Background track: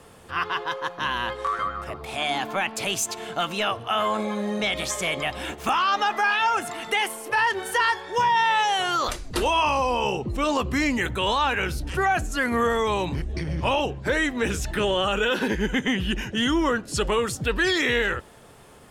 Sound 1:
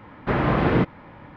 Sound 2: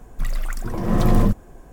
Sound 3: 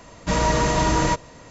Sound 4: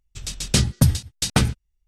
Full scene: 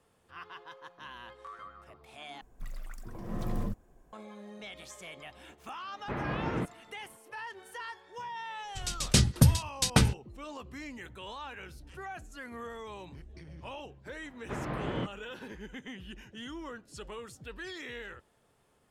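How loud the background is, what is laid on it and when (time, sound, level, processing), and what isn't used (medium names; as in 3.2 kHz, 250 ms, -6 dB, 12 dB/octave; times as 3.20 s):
background track -20 dB
2.41 s: replace with 2 -17 dB
5.81 s: add 1 -13.5 dB + expander -40 dBFS
8.60 s: add 4 -4.5 dB
14.22 s: add 1 -15 dB
not used: 3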